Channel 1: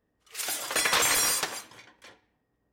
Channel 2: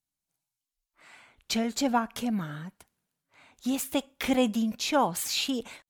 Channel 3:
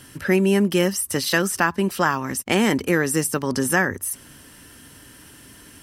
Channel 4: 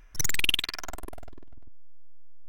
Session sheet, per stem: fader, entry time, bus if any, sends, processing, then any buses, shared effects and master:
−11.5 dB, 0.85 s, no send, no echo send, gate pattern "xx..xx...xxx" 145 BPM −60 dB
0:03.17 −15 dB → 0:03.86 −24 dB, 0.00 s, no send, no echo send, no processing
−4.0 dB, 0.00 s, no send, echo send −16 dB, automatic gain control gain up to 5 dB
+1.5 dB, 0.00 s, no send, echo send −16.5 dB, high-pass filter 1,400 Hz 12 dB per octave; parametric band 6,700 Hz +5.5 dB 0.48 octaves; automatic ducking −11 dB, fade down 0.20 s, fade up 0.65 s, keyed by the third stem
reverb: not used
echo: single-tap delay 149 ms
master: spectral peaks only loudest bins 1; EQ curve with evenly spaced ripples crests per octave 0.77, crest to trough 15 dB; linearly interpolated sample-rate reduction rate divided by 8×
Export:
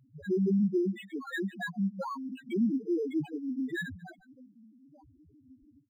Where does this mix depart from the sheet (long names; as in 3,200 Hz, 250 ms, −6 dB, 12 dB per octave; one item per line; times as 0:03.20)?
stem 1: entry 0.85 s → 0.30 s
master: missing EQ curve with evenly spaced ripples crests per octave 0.77, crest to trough 15 dB